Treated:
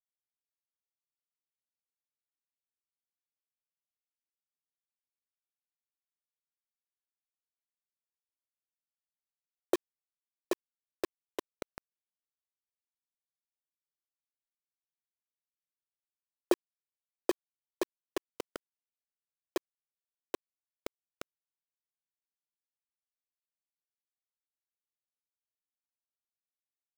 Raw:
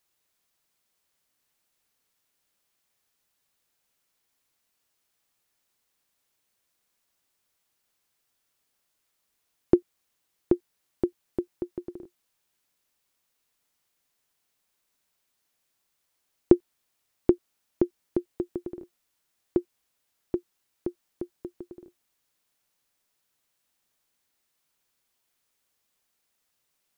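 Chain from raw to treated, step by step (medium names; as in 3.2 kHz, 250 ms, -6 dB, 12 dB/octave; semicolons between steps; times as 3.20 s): ladder high-pass 470 Hz, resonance 50%; peaking EQ 1.3 kHz +6 dB 0.78 oct; bit crusher 6-bit; trim +4 dB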